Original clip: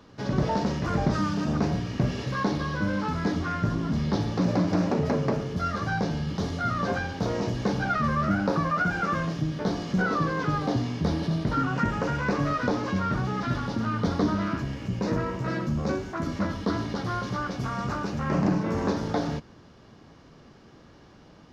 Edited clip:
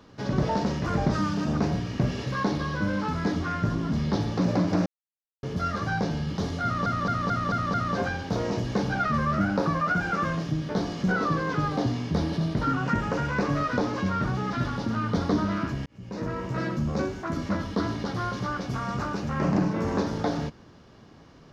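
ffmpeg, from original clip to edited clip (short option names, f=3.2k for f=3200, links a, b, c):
-filter_complex "[0:a]asplit=9[a][b][c][d][e][f][g][h][i];[a]atrim=end=4.86,asetpts=PTS-STARTPTS,afade=t=out:st=4.856:d=0.004:c=hsin[j];[b]atrim=start=4.86:end=5.43,asetpts=PTS-STARTPTS,volume=0[k];[c]atrim=start=5.43:end=6.862,asetpts=PTS-STARTPTS,afade=t=in:d=0.004:c=hsin[l];[d]atrim=start=6.638:end=6.862[m];[e]atrim=start=6.638:end=6.862[n];[f]atrim=start=6.638:end=6.862[o];[g]atrim=start=6.638:end=6.862[p];[h]atrim=start=6.638:end=14.76,asetpts=PTS-STARTPTS,afade=t=out:st=8.118:d=0.004:c=hsin[q];[i]atrim=start=14.76,asetpts=PTS-STARTPTS,afade=t=in:d=0.66[r];[j][k][l]concat=n=3:v=0:a=1[s];[s][m]acrossfade=d=0.004:c1=hsin:c2=hsin[t];[t][n]acrossfade=d=0.004:c1=hsin:c2=hsin[u];[u][o]acrossfade=d=0.004:c1=hsin:c2=hsin[v];[v][p]acrossfade=d=0.004:c1=hsin:c2=hsin[w];[q][r]concat=n=2:v=0:a=1[x];[w][x]acrossfade=d=0.004:c1=hsin:c2=hsin"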